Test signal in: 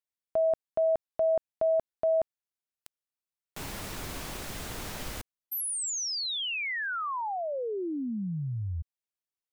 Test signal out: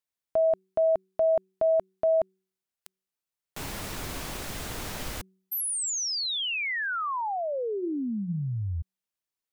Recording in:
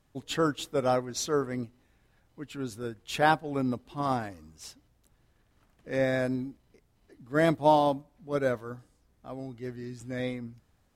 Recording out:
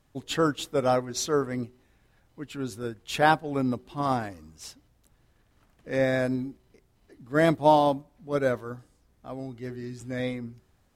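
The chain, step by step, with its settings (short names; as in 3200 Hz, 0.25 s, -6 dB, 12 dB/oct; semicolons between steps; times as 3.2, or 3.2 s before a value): de-hum 188.6 Hz, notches 2; gain +2.5 dB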